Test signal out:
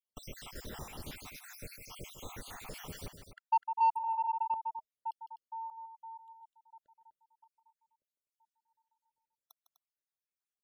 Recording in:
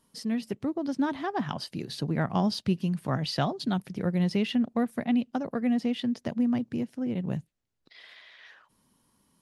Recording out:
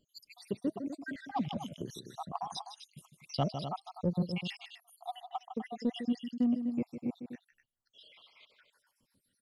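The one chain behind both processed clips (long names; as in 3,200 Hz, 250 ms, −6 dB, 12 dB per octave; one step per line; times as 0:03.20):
time-frequency cells dropped at random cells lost 78%
parametric band 600 Hz +2.5 dB 0.44 octaves
notch filter 640 Hz, Q 20
loudspeakers that aren't time-aligned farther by 53 metres −10 dB, 86 metres −11 dB
in parallel at −4 dB: soft clipping −25 dBFS
on the sum: level −5.5 dB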